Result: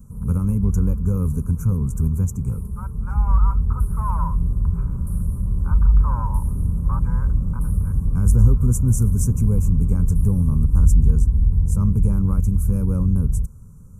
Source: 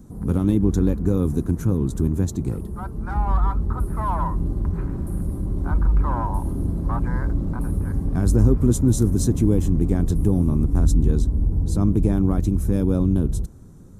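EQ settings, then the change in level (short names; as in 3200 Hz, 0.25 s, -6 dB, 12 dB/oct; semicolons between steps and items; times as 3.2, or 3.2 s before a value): Butterworth band-stop 3700 Hz, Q 1.3; fixed phaser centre 770 Hz, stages 4; fixed phaser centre 1700 Hz, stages 4; +4.5 dB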